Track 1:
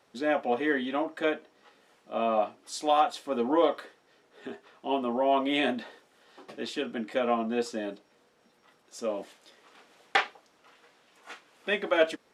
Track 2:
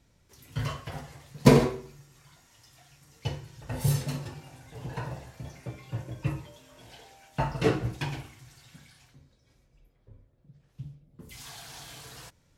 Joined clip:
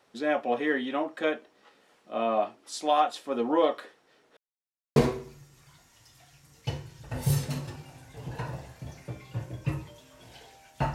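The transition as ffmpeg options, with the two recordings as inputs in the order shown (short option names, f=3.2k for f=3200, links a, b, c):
-filter_complex "[0:a]apad=whole_dur=10.94,atrim=end=10.94,asplit=2[a][b];[a]atrim=end=4.37,asetpts=PTS-STARTPTS,afade=t=out:st=4.366:d=0.004:c=hsin[c];[b]atrim=start=4.37:end=4.96,asetpts=PTS-STARTPTS,volume=0[d];[1:a]atrim=start=1.54:end=7.52,asetpts=PTS-STARTPTS,afade=t=in:d=0.004:c=hsin[e];[c][d][e]concat=n=3:v=0:a=1"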